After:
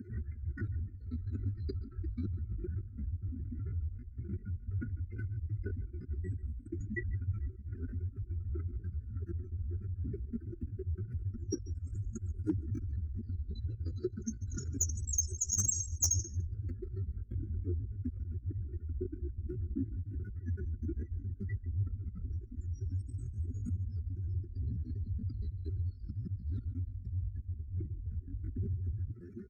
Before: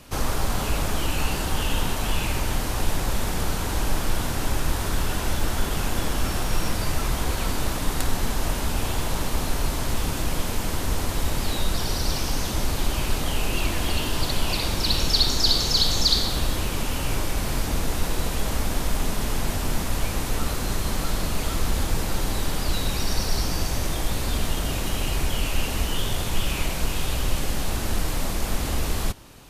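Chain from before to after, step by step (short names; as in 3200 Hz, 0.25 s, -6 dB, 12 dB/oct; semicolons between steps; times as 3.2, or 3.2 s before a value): spectral contrast raised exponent 3.7; HPF 68 Hz 24 dB/oct; in parallel at 0 dB: negative-ratio compressor -43 dBFS, ratio -1; on the sum: elliptic band-stop 310–970 Hz, stop band 40 dB; fixed phaser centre 490 Hz, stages 8; doubler 12 ms -12.5 dB; echo 0.145 s -19.5 dB; pitch shift +6.5 st; hard clip -28 dBFS, distortion -20 dB; gain +5 dB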